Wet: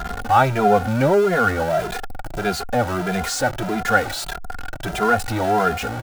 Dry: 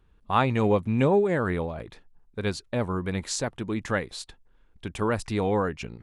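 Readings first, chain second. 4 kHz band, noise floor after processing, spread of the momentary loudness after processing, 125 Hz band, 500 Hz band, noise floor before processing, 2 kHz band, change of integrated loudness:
+8.0 dB, −32 dBFS, 13 LU, +3.5 dB, +6.0 dB, −60 dBFS, +11.0 dB, +6.5 dB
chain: converter with a step at zero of −23.5 dBFS
hollow resonant body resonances 740/1,400 Hz, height 17 dB, ringing for 30 ms
barber-pole flanger 2.5 ms +1.6 Hz
level +2 dB

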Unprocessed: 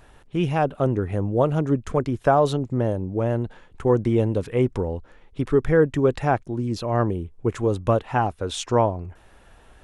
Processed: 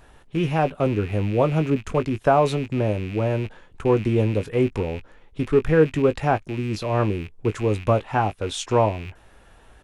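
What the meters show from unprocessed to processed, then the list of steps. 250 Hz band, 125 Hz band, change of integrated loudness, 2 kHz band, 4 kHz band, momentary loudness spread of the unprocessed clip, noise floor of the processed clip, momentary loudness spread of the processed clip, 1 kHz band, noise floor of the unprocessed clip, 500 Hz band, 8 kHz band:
0.0 dB, +0.5 dB, +0.5 dB, +2.0 dB, +1.5 dB, 9 LU, −52 dBFS, 10 LU, +0.5 dB, −53 dBFS, +0.5 dB, can't be measured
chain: loose part that buzzes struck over −35 dBFS, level −28 dBFS
double-tracking delay 19 ms −11.5 dB

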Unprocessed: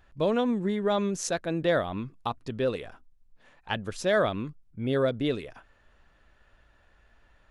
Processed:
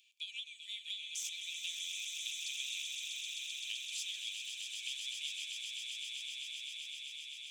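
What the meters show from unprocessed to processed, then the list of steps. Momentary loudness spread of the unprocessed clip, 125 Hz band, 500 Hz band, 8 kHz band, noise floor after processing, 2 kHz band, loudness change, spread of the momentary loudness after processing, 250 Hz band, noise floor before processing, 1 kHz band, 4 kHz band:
10 LU, below −40 dB, below −40 dB, +0.5 dB, −52 dBFS, −8.0 dB, −11.0 dB, 5 LU, below −40 dB, −63 dBFS, below −40 dB, +4.0 dB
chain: stylus tracing distortion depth 0.033 ms
in parallel at 0 dB: brickwall limiter −21 dBFS, peak gain reduction 7.5 dB
on the sum: Chebyshev high-pass with heavy ripple 2,300 Hz, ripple 6 dB
parametric band 9,600 Hz −8 dB 0.23 octaves
downward compressor 8 to 1, threshold −43 dBFS, peak gain reduction 15.5 dB
soft clipping −31 dBFS, distortion −25 dB
on a send: echo that builds up and dies away 129 ms, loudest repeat 8, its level −7 dB
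on the sum: level +3.5 dB

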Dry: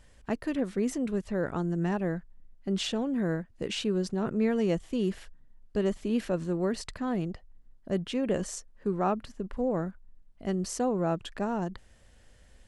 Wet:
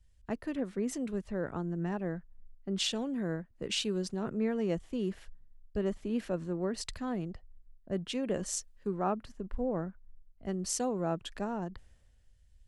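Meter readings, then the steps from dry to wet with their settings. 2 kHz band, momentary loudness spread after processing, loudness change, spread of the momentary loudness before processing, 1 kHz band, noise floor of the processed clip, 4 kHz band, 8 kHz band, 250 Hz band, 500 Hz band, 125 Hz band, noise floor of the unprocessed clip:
−4.5 dB, 7 LU, −4.0 dB, 8 LU, −4.5 dB, −63 dBFS, +1.0 dB, +2.5 dB, −5.0 dB, −4.5 dB, −5.0 dB, −58 dBFS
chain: downward compressor 1.5 to 1, threshold −38 dBFS, peak gain reduction 6 dB
multiband upward and downward expander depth 70%

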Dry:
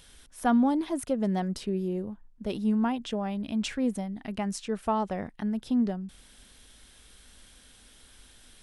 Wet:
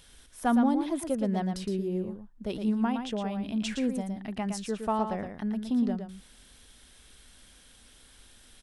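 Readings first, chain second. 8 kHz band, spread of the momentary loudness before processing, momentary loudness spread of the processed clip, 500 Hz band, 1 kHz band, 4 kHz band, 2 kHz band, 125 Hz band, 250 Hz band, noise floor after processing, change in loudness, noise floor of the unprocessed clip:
−0.5 dB, 10 LU, 9 LU, −0.5 dB, −0.5 dB, −0.5 dB, −0.5 dB, −0.5 dB, −0.5 dB, −57 dBFS, −0.5 dB, −56 dBFS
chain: single-tap delay 115 ms −7 dB
level −1.5 dB

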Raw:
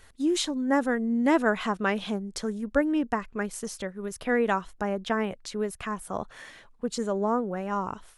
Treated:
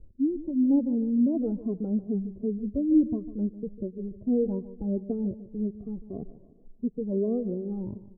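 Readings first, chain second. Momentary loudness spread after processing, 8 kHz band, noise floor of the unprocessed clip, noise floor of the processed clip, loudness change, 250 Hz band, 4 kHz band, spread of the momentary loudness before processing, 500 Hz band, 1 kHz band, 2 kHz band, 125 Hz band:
12 LU, below −40 dB, −55 dBFS, −54 dBFS, 0.0 dB, +2.5 dB, below −40 dB, 10 LU, −4.0 dB, below −20 dB, below −40 dB, +3.0 dB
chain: rippled gain that drifts along the octave scale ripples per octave 1.4, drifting +2.7 Hz, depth 21 dB
inverse Chebyshev low-pass filter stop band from 1,700 Hz, stop band 70 dB
repeating echo 149 ms, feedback 41%, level −15 dB

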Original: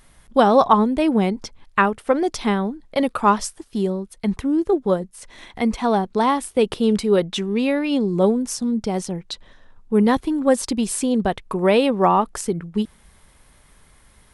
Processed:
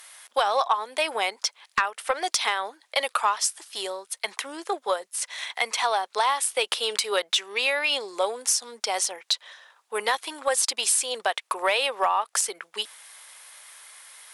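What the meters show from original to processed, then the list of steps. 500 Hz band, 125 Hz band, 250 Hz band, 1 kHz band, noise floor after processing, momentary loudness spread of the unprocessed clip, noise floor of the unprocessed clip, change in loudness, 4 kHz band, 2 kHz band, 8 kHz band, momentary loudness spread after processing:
−9.5 dB, below −35 dB, −27.0 dB, −4.5 dB, −67 dBFS, 9 LU, −54 dBFS, −5.5 dB, +6.0 dB, +2.0 dB, +6.5 dB, 11 LU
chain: high-pass filter 540 Hz 24 dB per octave
tilt shelving filter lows −8 dB
downward compressor 4 to 1, threshold −24 dBFS, peak gain reduction 13 dB
sine wavefolder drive 4 dB, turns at −7 dBFS
level −4 dB

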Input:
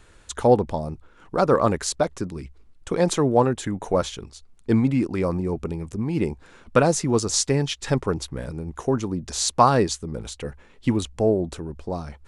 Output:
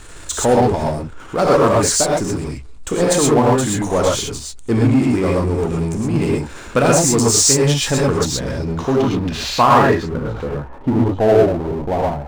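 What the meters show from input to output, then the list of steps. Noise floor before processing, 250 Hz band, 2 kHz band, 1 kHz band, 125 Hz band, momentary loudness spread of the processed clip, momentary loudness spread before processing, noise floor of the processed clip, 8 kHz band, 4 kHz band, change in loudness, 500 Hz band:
−53 dBFS, +6.5 dB, +9.0 dB, +7.0 dB, +7.0 dB, 12 LU, 14 LU, −35 dBFS, +11.0 dB, +8.5 dB, +7.0 dB, +7.0 dB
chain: low-pass filter sweep 8,500 Hz → 800 Hz, 0:07.99–0:10.81
reverb whose tail is shaped and stops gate 150 ms rising, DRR −3 dB
power curve on the samples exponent 0.7
level −2.5 dB

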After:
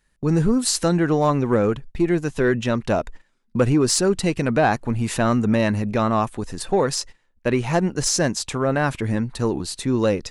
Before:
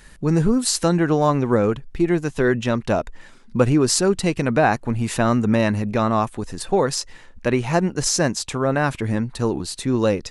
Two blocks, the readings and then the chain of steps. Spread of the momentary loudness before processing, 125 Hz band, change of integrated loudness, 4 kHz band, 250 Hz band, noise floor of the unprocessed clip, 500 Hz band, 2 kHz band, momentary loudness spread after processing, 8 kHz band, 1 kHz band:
6 LU, −0.5 dB, −0.5 dB, −0.5 dB, −0.5 dB, −46 dBFS, −0.5 dB, −1.0 dB, 6 LU, −0.5 dB, −1.0 dB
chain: soft clipping −7 dBFS, distortion −23 dB
noise gate −34 dBFS, range −21 dB

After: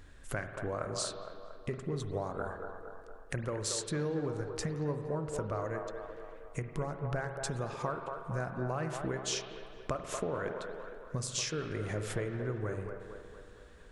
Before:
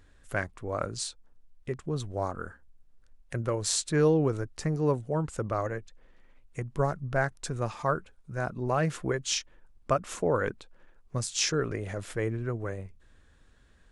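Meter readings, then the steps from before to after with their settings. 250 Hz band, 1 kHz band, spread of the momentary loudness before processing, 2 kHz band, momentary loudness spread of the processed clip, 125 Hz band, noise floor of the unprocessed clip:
−6.0 dB, −6.0 dB, 12 LU, −6.0 dB, 12 LU, −5.5 dB, −60 dBFS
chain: downward compressor 6 to 1, threshold −38 dBFS, peak gain reduction 17.5 dB
on a send: delay with a band-pass on its return 231 ms, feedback 56%, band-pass 730 Hz, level −4.5 dB
on the sum: spring reverb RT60 1.8 s, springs 47 ms, chirp 70 ms, DRR 7.5 dB
level +4.5 dB

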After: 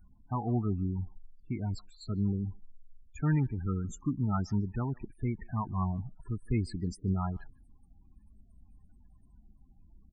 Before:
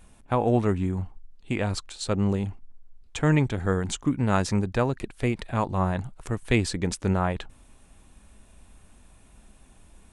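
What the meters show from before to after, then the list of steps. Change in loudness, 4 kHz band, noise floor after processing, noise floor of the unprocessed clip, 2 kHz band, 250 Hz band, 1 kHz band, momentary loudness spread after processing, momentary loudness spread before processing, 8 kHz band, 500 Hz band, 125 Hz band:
−7.0 dB, below −15 dB, −61 dBFS, −55 dBFS, −16.5 dB, −6.5 dB, −10.0 dB, 9 LU, 10 LU, −17.0 dB, −15.5 dB, −4.5 dB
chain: spectral peaks only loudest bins 16
phaser with its sweep stopped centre 1,300 Hz, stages 4
far-end echo of a speakerphone 150 ms, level −25 dB
level −4 dB

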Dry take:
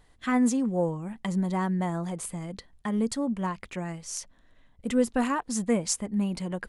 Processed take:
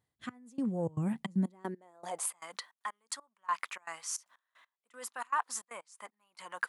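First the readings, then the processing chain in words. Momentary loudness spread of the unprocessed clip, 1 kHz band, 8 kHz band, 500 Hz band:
11 LU, −4.0 dB, −5.5 dB, −12.5 dB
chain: high-shelf EQ 8,900 Hz +6.5 dB
reversed playback
downward compressor 12 to 1, threshold −34 dBFS, peak gain reduction 16.5 dB
reversed playback
gate pattern "..x...xxx.xxx.x" 155 BPM −24 dB
tape wow and flutter 23 cents
high-pass filter sweep 110 Hz → 1,100 Hz, 0:01.00–0:02.40
level +3 dB

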